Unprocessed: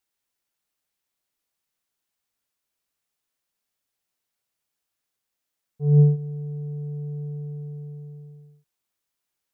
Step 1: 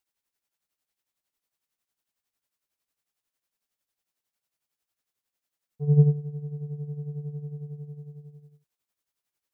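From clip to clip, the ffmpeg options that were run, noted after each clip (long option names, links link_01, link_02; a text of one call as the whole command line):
ffmpeg -i in.wav -af "tremolo=f=11:d=0.68" out.wav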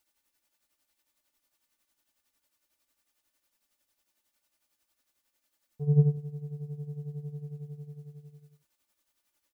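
ffmpeg -i in.wav -af "aecho=1:1:3.4:0.69,volume=6dB" out.wav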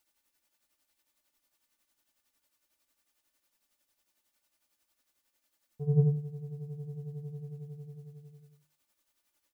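ffmpeg -i in.wav -af "bandreject=frequency=50:width_type=h:width=6,bandreject=frequency=100:width_type=h:width=6,bandreject=frequency=150:width_type=h:width=6" out.wav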